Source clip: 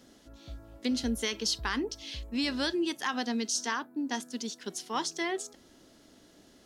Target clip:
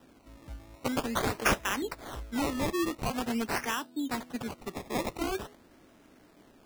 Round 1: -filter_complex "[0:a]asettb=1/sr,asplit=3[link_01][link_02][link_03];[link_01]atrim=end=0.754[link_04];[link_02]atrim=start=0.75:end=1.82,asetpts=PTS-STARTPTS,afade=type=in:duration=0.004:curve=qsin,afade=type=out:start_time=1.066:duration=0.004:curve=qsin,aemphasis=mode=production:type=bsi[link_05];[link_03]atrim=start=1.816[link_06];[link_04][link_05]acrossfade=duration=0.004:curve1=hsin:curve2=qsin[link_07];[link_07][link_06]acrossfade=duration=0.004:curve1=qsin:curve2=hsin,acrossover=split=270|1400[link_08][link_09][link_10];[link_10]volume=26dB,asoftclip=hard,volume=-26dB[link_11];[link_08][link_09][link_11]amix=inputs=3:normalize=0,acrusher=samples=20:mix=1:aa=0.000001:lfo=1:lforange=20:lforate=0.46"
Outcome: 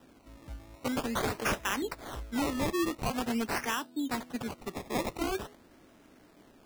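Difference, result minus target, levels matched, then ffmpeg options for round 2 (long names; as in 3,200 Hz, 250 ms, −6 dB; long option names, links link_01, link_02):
gain into a clipping stage and back: distortion +13 dB
-filter_complex "[0:a]asettb=1/sr,asplit=3[link_01][link_02][link_03];[link_01]atrim=end=0.754[link_04];[link_02]atrim=start=0.75:end=1.82,asetpts=PTS-STARTPTS,afade=type=in:duration=0.004:curve=qsin,afade=type=out:start_time=1.066:duration=0.004:curve=qsin,aemphasis=mode=production:type=bsi[link_05];[link_03]atrim=start=1.816[link_06];[link_04][link_05]acrossfade=duration=0.004:curve1=hsin:curve2=qsin[link_07];[link_07][link_06]acrossfade=duration=0.004:curve1=qsin:curve2=hsin,acrossover=split=270|1400[link_08][link_09][link_10];[link_10]volume=17.5dB,asoftclip=hard,volume=-17.5dB[link_11];[link_08][link_09][link_11]amix=inputs=3:normalize=0,acrusher=samples=20:mix=1:aa=0.000001:lfo=1:lforange=20:lforate=0.46"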